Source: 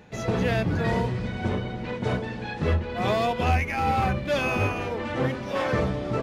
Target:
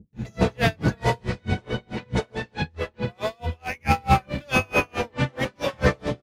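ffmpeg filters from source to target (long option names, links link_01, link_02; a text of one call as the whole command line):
ffmpeg -i in.wav -filter_complex "[0:a]highshelf=frequency=3800:gain=6,asplit=2[link_01][link_02];[link_02]adelay=14,volume=-12.5dB[link_03];[link_01][link_03]amix=inputs=2:normalize=0,acrossover=split=280[link_04][link_05];[link_05]adelay=130[link_06];[link_04][link_06]amix=inputs=2:normalize=0,asettb=1/sr,asplit=3[link_07][link_08][link_09];[link_07]atrim=end=2.194[link_10];[link_08]atrim=start=2.19:end=3.85,asetpts=PTS-STARTPTS,afade=type=in:duration=0.004:curve=qsin,afade=type=out:start_time=1.656:duration=0.004:curve=qsin,acompressor=threshold=-28dB:ratio=10[link_11];[link_09]atrim=start=3.846[link_12];[link_10][link_11]acrossfade=duration=0.004:curve1=hsin:curve2=qsin[link_13];[link_13][link_12]acrossfade=duration=0.004:curve1=qsin:curve2=hsin,aeval=exprs='val(0)*pow(10,-36*(0.5-0.5*cos(2*PI*4.6*n/s))/20)':channel_layout=same,volume=8.5dB" out.wav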